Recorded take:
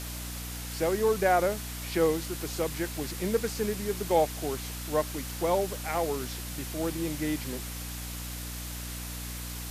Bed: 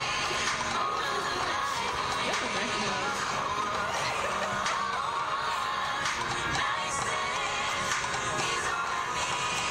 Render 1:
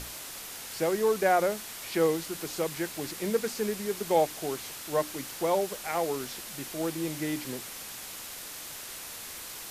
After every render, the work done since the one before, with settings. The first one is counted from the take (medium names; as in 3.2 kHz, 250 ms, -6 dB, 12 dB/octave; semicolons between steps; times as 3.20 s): hum notches 60/120/180/240/300 Hz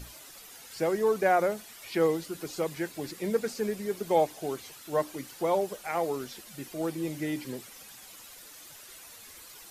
noise reduction 11 dB, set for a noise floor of -42 dBFS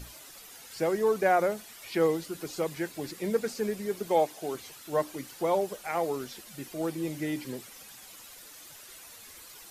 4.07–4.55 s: high-pass 200 Hz 6 dB/octave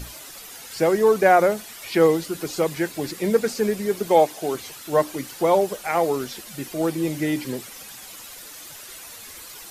trim +8.5 dB